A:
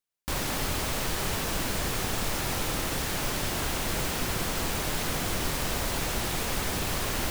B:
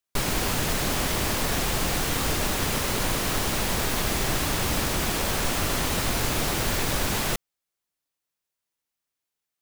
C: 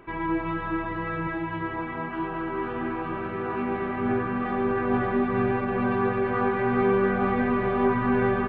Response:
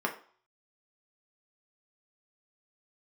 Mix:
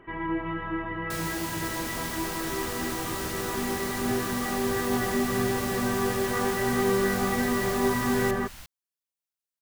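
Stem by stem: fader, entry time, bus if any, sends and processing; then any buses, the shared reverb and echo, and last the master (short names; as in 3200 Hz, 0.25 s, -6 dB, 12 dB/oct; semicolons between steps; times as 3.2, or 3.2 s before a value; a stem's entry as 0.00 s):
-14.0 dB, 1.35 s, no send, bell 390 Hz -14.5 dB 1.7 oct
-12.0 dB, 0.95 s, no send, HPF 41 Hz; high shelf 3800 Hz +5.5 dB
-2.5 dB, 0.00 s, no send, high shelf 2900 Hz -10 dB; small resonant body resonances 1900/3000 Hz, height 18 dB, ringing for 50 ms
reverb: off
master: dry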